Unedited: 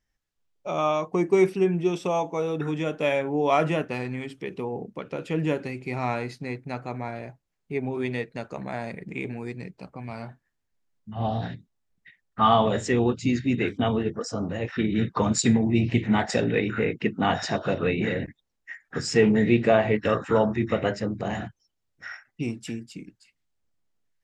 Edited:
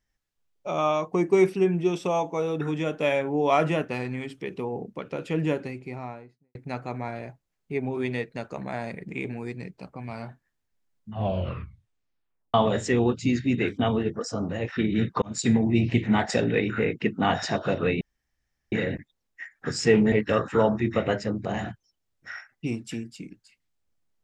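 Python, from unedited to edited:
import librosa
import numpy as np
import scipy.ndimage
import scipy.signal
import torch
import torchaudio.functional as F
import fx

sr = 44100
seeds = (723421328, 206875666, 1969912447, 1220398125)

y = fx.studio_fade_out(x, sr, start_s=5.39, length_s=1.16)
y = fx.edit(y, sr, fx.tape_stop(start_s=11.13, length_s=1.41),
    fx.fade_in_span(start_s=15.22, length_s=0.33),
    fx.insert_room_tone(at_s=18.01, length_s=0.71),
    fx.cut(start_s=19.41, length_s=0.47), tone=tone)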